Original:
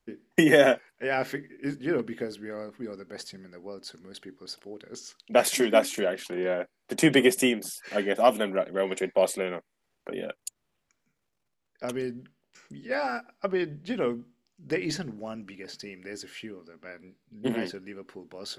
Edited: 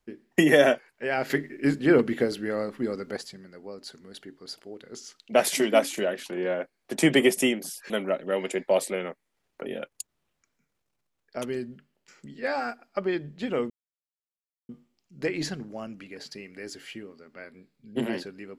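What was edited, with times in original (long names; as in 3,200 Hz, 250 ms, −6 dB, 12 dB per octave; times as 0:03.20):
0:01.30–0:03.17: clip gain +8 dB
0:07.90–0:08.37: remove
0:14.17: splice in silence 0.99 s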